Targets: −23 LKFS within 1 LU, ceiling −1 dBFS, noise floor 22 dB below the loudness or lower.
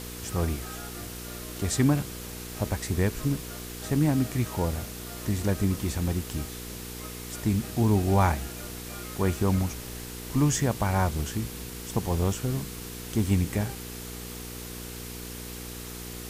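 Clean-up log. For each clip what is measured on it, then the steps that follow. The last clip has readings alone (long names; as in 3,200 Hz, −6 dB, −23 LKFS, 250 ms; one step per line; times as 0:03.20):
mains hum 60 Hz; hum harmonics up to 480 Hz; level of the hum −38 dBFS; background noise floor −39 dBFS; target noise floor −52 dBFS; integrated loudness −29.5 LKFS; sample peak −10.0 dBFS; target loudness −23.0 LKFS
→ hum removal 60 Hz, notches 8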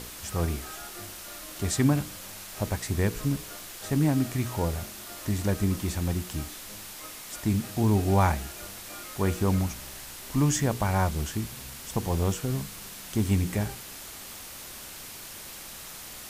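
mains hum none found; background noise floor −43 dBFS; target noise floor −52 dBFS
→ broadband denoise 9 dB, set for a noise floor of −43 dBFS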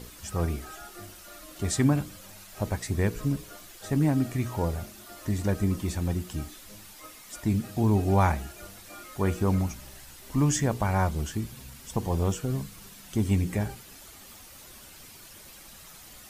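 background noise floor −49 dBFS; target noise floor −51 dBFS
→ broadband denoise 6 dB, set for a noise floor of −49 dBFS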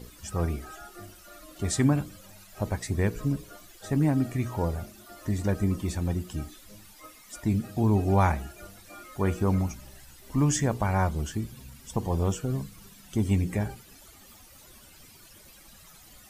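background noise floor −52 dBFS; integrated loudness −28.5 LKFS; sample peak −11.0 dBFS; target loudness −23.0 LKFS
→ level +5.5 dB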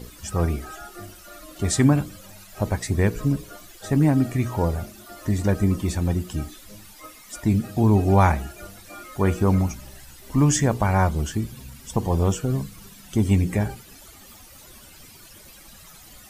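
integrated loudness −23.0 LKFS; sample peak −5.5 dBFS; background noise floor −47 dBFS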